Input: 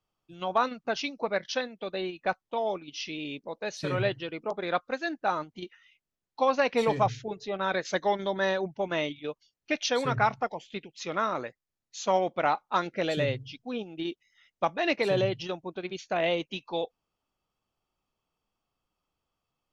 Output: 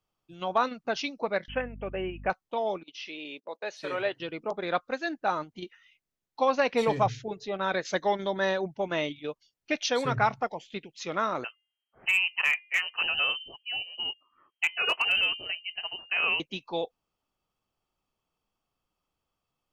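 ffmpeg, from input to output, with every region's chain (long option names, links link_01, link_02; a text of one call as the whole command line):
ffmpeg -i in.wav -filter_complex "[0:a]asettb=1/sr,asplit=3[link_01][link_02][link_03];[link_01]atrim=end=1.484[link_04];[link_02]atrim=start=1.48:end=2.3,asetpts=PTS-STARTPTS,afade=type=in:duration=0.004:curve=qsin,afade=type=out:start_time=0.816:duration=0.004:curve=qsin,aeval=exprs='val(0)+0.00794*(sin(2*PI*50*n/s)+sin(2*PI*2*50*n/s)/2+sin(2*PI*3*50*n/s)/3+sin(2*PI*4*50*n/s)/4+sin(2*PI*5*50*n/s)/5)':channel_layout=same,asuperstop=centerf=5100:order=20:qfactor=1[link_05];[link_03]atrim=start=2.296[link_06];[link_04][link_05]acrossfade=duration=0.004:curve1=hsin:curve2=qsin[link_07];[link_07][link_06]acrossfade=duration=0.004:curve1=qsin:curve2=hsin,asettb=1/sr,asplit=3[link_08][link_09][link_10];[link_08]atrim=end=2.834[link_11];[link_09]atrim=start=2.83:end=4.2,asetpts=PTS-STARTPTS,afade=type=in:duration=0.004:curve=qsin,afade=type=out:start_time=1.366:duration=0.004:curve=qsin,agate=range=-14dB:threshold=-47dB:ratio=16:release=100:detection=peak,highpass=410,acrossover=split=3400[link_12][link_13];[link_13]acompressor=threshold=-50dB:ratio=4:attack=1:release=60[link_14];[link_12][link_14]amix=inputs=2:normalize=0[link_15];[link_10]atrim=start=4.196[link_16];[link_11][link_15]acrossfade=duration=0.004:curve1=hsin:curve2=qsin[link_17];[link_17][link_16]acrossfade=duration=0.004:curve1=qsin:curve2=hsin,asettb=1/sr,asplit=3[link_18][link_19][link_20];[link_18]atrim=end=11.444[link_21];[link_19]atrim=start=11.44:end=16.4,asetpts=PTS-STARTPTS,afade=type=in:duration=0.004:curve=qsin,afade=type=out:start_time=4.956:duration=0.004:curve=qsin,bandreject=frequency=378.8:width_type=h:width=4,bandreject=frequency=757.6:width_type=h:width=4,bandreject=frequency=1136.4:width_type=h:width=4,lowpass=frequency=2700:width_type=q:width=0.5098,lowpass=frequency=2700:width_type=q:width=0.6013,lowpass=frequency=2700:width_type=q:width=0.9,lowpass=frequency=2700:width_type=q:width=2.563,afreqshift=-3200,asoftclip=type=hard:threshold=-17dB[link_22];[link_20]atrim=start=16.396[link_23];[link_21][link_22]acrossfade=duration=0.004:curve1=hsin:curve2=qsin[link_24];[link_24][link_23]acrossfade=duration=0.004:curve1=qsin:curve2=hsin" out.wav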